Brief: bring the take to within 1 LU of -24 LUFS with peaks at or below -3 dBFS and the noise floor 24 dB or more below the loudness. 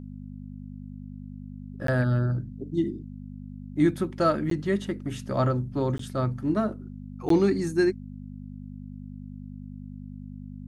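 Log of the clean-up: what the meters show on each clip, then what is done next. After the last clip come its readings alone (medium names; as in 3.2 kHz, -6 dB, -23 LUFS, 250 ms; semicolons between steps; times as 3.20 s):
dropouts 4; longest dropout 13 ms; hum 50 Hz; highest harmonic 250 Hz; hum level -37 dBFS; loudness -26.5 LUFS; peak level -11.0 dBFS; loudness target -24.0 LUFS
-> interpolate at 1.87/4.50/5.98/7.29 s, 13 ms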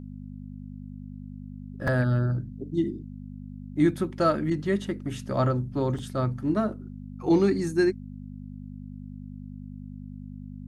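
dropouts 0; hum 50 Hz; highest harmonic 250 Hz; hum level -37 dBFS
-> de-hum 50 Hz, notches 5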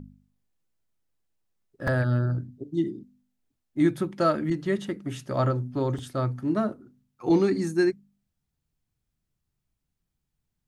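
hum not found; loudness -27.0 LUFS; peak level -10.5 dBFS; loudness target -24.0 LUFS
-> trim +3 dB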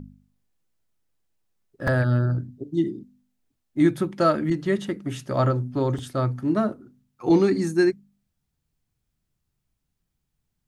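loudness -24.0 LUFS; peak level -7.5 dBFS; noise floor -78 dBFS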